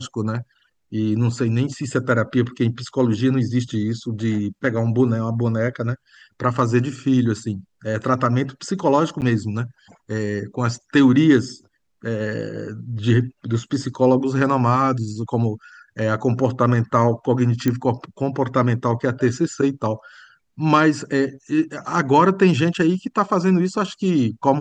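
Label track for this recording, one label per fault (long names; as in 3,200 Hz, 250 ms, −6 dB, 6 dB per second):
9.210000	9.220000	drop-out 9 ms
17.680000	17.680000	click −8 dBFS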